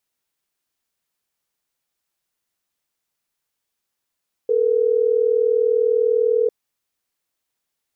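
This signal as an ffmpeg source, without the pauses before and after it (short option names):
-f lavfi -i "aevalsrc='0.133*(sin(2*PI*440*t)+sin(2*PI*480*t))*clip(min(mod(t,6),2-mod(t,6))/0.005,0,1)':d=3.12:s=44100"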